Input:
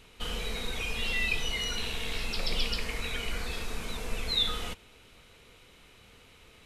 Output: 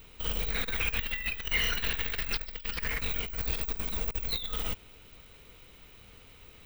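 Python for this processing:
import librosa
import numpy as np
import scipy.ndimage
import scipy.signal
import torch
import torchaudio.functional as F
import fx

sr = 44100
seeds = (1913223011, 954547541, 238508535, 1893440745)

y = fx.low_shelf(x, sr, hz=120.0, db=6.5)
y = fx.over_compress(y, sr, threshold_db=-29.0, ratio=-0.5)
y = (np.kron(y[::2], np.eye(2)[0]) * 2)[:len(y)]
y = fx.peak_eq(y, sr, hz=1700.0, db=12.0, octaves=0.83, at=(0.5, 3.01))
y = fx.doppler_dist(y, sr, depth_ms=0.26)
y = y * librosa.db_to_amplitude(-4.0)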